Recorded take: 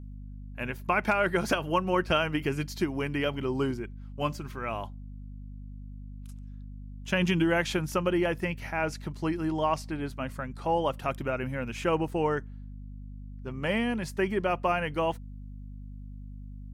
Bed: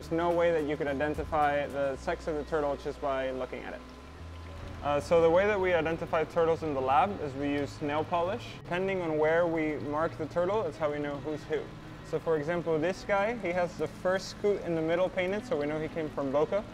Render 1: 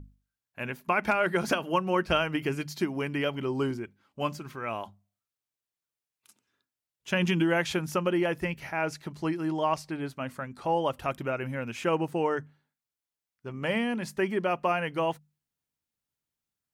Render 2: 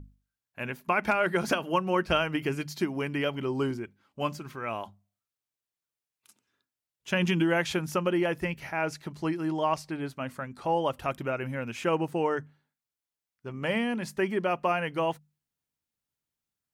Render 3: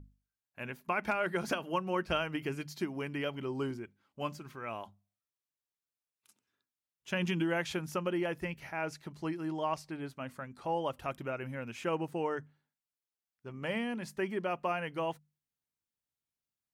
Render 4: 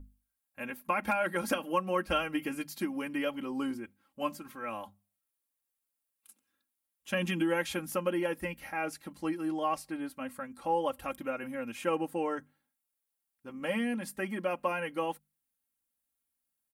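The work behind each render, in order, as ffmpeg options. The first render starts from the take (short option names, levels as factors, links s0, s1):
-af "bandreject=f=50:t=h:w=6,bandreject=f=100:t=h:w=6,bandreject=f=150:t=h:w=6,bandreject=f=200:t=h:w=6,bandreject=f=250:t=h:w=6"
-af anull
-af "volume=0.473"
-af "highshelf=f=7800:t=q:w=1.5:g=7,aecho=1:1:3.7:0.82"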